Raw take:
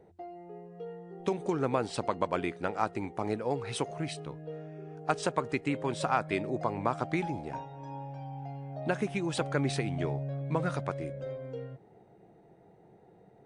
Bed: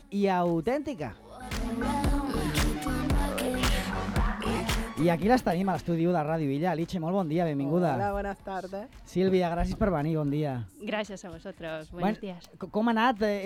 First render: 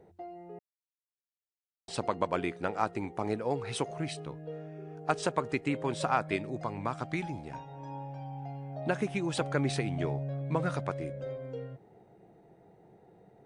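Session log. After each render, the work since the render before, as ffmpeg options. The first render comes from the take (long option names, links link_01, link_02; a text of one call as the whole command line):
ffmpeg -i in.wav -filter_complex "[0:a]asettb=1/sr,asplit=3[link_01][link_02][link_03];[link_01]atrim=end=6.364[link_04];[link_02]atrim=start=6.36:end=7.68,asetpts=PTS-STARTPTS,afade=type=in:duration=0.004:curve=qsin,afade=type=out:start_time=1.316:duration=0.004:curve=qsin,equalizer=frequency=540:width=0.57:gain=-6[link_05];[link_03]atrim=start=7.676[link_06];[link_04][link_05]acrossfade=duration=0.004:curve1=hsin:curve2=qsin[link_07];[link_07][link_06]acrossfade=duration=0.004:curve1=qsin:curve2=hsin,asplit=3[link_08][link_09][link_10];[link_08]atrim=end=0.59,asetpts=PTS-STARTPTS,afade=type=out:start_time=0.586:duration=0.004:curve=hsin[link_11];[link_09]atrim=start=0.59:end=1.88,asetpts=PTS-STARTPTS,volume=0[link_12];[link_10]atrim=start=1.88,asetpts=PTS-STARTPTS,afade=type=in:duration=0.004:curve=hsin[link_13];[link_11][link_12][link_13]concat=n=3:v=0:a=1" out.wav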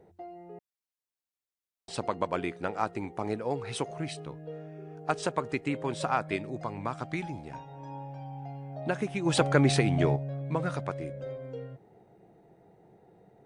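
ffmpeg -i in.wav -filter_complex "[0:a]asplit=3[link_01][link_02][link_03];[link_01]afade=type=out:start_time=9.25:duration=0.02[link_04];[link_02]acontrast=84,afade=type=in:start_time=9.25:duration=0.02,afade=type=out:start_time=10.15:duration=0.02[link_05];[link_03]afade=type=in:start_time=10.15:duration=0.02[link_06];[link_04][link_05][link_06]amix=inputs=3:normalize=0" out.wav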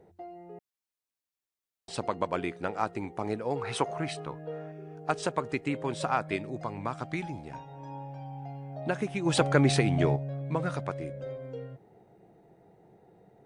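ffmpeg -i in.wav -filter_complex "[0:a]asettb=1/sr,asplit=3[link_01][link_02][link_03];[link_01]atrim=end=3.564[link_04];[link_02]atrim=start=3.56:end=4.72,asetpts=PTS-STARTPTS,afade=type=in:duration=0.004:curve=qsin,afade=type=out:start_time=1.156:duration=0.004:curve=qsin,equalizer=frequency=1100:width=0.73:gain=9[link_05];[link_03]atrim=start=4.716[link_06];[link_04][link_05]acrossfade=duration=0.004:curve1=hsin:curve2=qsin[link_07];[link_07][link_06]acrossfade=duration=0.004:curve1=qsin:curve2=hsin" out.wav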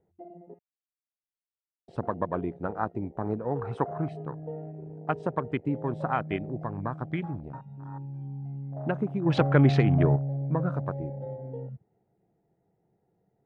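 ffmpeg -i in.wav -af "afwtdn=0.0158,bass=frequency=250:gain=6,treble=frequency=4000:gain=-13" out.wav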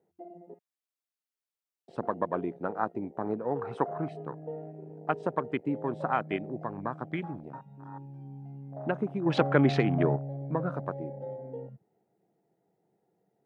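ffmpeg -i in.wav -af "highpass=200" out.wav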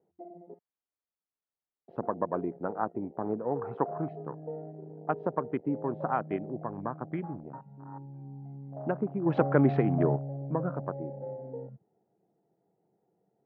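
ffmpeg -i in.wav -af "lowpass=1300" out.wav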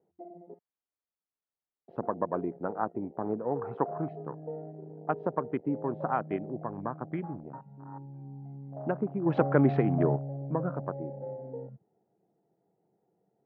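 ffmpeg -i in.wav -af anull out.wav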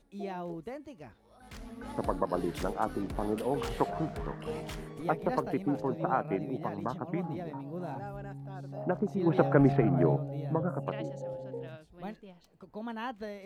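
ffmpeg -i in.wav -i bed.wav -filter_complex "[1:a]volume=-13.5dB[link_01];[0:a][link_01]amix=inputs=2:normalize=0" out.wav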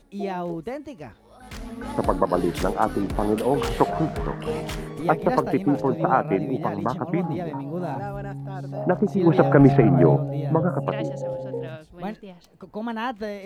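ffmpeg -i in.wav -af "volume=9.5dB,alimiter=limit=-2dB:level=0:latency=1" out.wav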